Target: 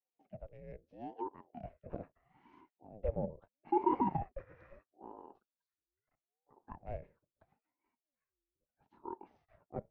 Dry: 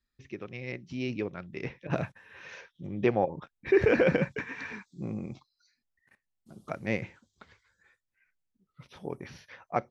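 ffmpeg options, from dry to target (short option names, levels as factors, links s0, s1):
-filter_complex "[0:a]afreqshift=-150,asplit=2[s0][s1];[s1]asoftclip=type=hard:threshold=0.0447,volume=0.422[s2];[s0][s2]amix=inputs=2:normalize=0,bandpass=f=300:t=q:w=2.4:csg=0,aeval=exprs='val(0)*sin(2*PI*420*n/s+420*0.55/0.77*sin(2*PI*0.77*n/s))':c=same,volume=0.668"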